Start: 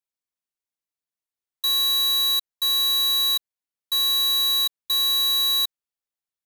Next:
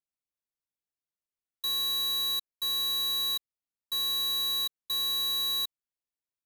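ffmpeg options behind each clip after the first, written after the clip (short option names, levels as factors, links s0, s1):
-af "lowshelf=f=490:g=7.5,volume=0.376"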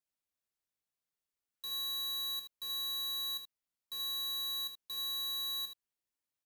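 -af "alimiter=level_in=5.31:limit=0.0631:level=0:latency=1,volume=0.188,aecho=1:1:25|77:0.282|0.422"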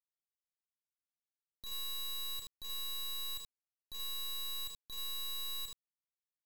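-af "bandreject=f=233.4:t=h:w=4,bandreject=f=466.8:t=h:w=4,bandreject=f=700.2:t=h:w=4,bandreject=f=933.6:t=h:w=4,bandreject=f=1167:t=h:w=4,bandreject=f=1400.4:t=h:w=4,bandreject=f=1633.8:t=h:w=4,bandreject=f=1867.2:t=h:w=4,bandreject=f=2100.6:t=h:w=4,bandreject=f=2334:t=h:w=4,acrusher=bits=5:dc=4:mix=0:aa=0.000001,volume=1.12"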